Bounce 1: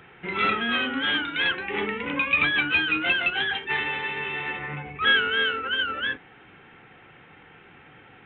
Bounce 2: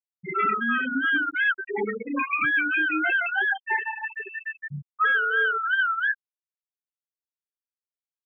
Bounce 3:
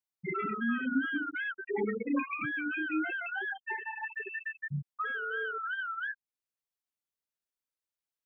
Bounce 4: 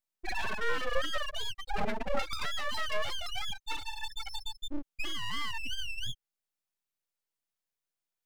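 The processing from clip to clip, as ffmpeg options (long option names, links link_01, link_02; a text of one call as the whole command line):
ffmpeg -i in.wav -af "afftfilt=real='re*gte(hypot(re,im),0.158)':imag='im*gte(hypot(re,im),0.158)':win_size=1024:overlap=0.75,highshelf=frequency=2200:width_type=q:width=1.5:gain=-12,alimiter=limit=-19dB:level=0:latency=1:release=400,volume=4dB" out.wav
ffmpeg -i in.wav -filter_complex "[0:a]acrossover=split=350[link_01][link_02];[link_02]acompressor=threshold=-35dB:ratio=6[link_03];[link_01][link_03]amix=inputs=2:normalize=0" out.wav
ffmpeg -i in.wav -af "aeval=exprs='abs(val(0))':channel_layout=same,volume=3dB" out.wav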